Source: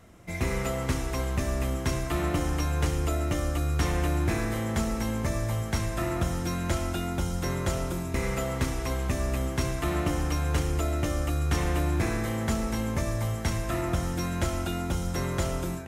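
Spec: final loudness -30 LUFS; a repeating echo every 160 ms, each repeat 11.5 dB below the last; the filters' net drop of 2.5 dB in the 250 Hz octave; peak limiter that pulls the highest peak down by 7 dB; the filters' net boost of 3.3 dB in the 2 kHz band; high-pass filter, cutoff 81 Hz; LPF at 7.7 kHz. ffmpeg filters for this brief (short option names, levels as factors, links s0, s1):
-af "highpass=81,lowpass=7700,equalizer=f=250:t=o:g=-3.5,equalizer=f=2000:t=o:g=4,alimiter=limit=0.0794:level=0:latency=1,aecho=1:1:160|320|480:0.266|0.0718|0.0194,volume=1.19"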